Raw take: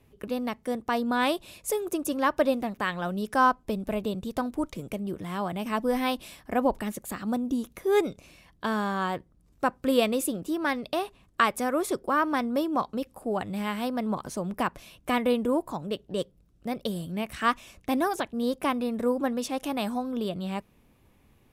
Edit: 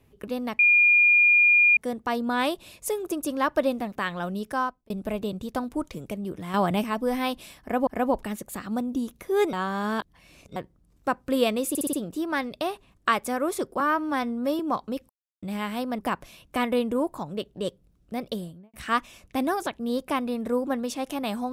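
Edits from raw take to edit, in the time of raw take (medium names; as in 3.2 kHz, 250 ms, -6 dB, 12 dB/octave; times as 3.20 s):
0.59 s: add tone 2.42 kHz -14.5 dBFS 1.18 s
3.17–3.72 s: fade out linear
5.36–5.66 s: gain +7.5 dB
6.43–6.69 s: loop, 2 plays
8.09–9.12 s: reverse
10.25 s: stutter 0.06 s, 5 plays
12.12–12.65 s: stretch 1.5×
13.15–13.48 s: mute
14.04–14.52 s: delete
16.82–17.27 s: studio fade out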